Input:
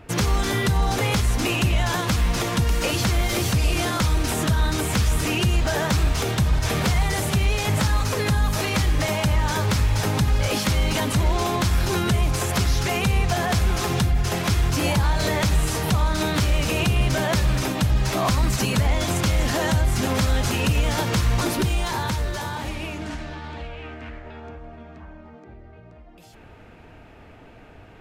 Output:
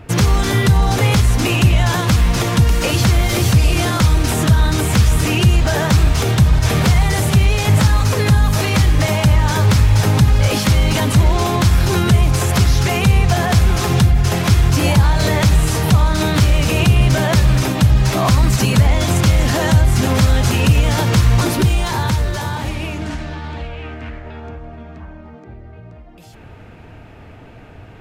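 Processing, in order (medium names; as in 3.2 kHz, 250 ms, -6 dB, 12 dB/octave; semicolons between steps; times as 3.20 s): peaking EQ 110 Hz +6 dB 1.4 oct; trim +5 dB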